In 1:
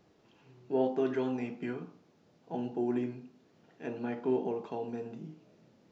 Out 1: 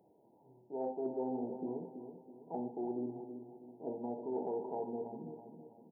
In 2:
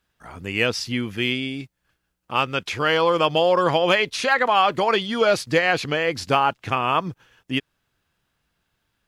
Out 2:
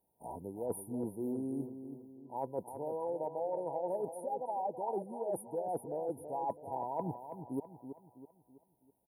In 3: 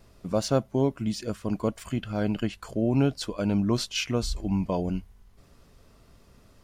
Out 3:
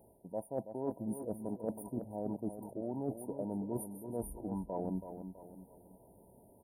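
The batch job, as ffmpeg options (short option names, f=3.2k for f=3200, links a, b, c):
-filter_complex "[0:a]highpass=f=390:p=1,afftfilt=real='re*(1-between(b*sr/4096,990,9000))':imag='im*(1-between(b*sr/4096,990,9000))':win_size=4096:overlap=0.75,adynamicequalizer=threshold=0.0178:dfrequency=900:dqfactor=0.73:tfrequency=900:tqfactor=0.73:attack=5:release=100:ratio=0.375:range=1.5:mode=boostabove:tftype=bell,areverse,acompressor=threshold=-36dB:ratio=16,areverse,asplit=2[a][b];[b]adelay=327,lowpass=f=3.1k:p=1,volume=-9dB,asplit=2[c][d];[d]adelay=327,lowpass=f=3.1k:p=1,volume=0.44,asplit=2[e][f];[f]adelay=327,lowpass=f=3.1k:p=1,volume=0.44,asplit=2[g][h];[h]adelay=327,lowpass=f=3.1k:p=1,volume=0.44,asplit=2[i][j];[j]adelay=327,lowpass=f=3.1k:p=1,volume=0.44[k];[a][c][e][g][i][k]amix=inputs=6:normalize=0,volume=2dB"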